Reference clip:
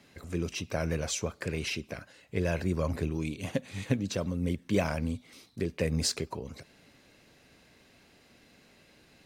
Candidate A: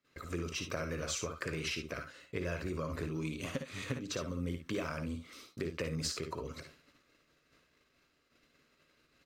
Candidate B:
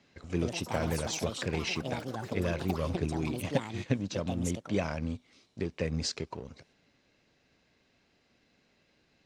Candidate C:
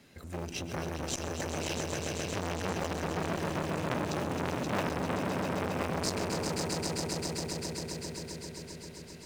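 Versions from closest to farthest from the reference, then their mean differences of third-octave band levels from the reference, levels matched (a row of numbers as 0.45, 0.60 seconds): A, B, C; 5.0, 6.5, 13.0 decibels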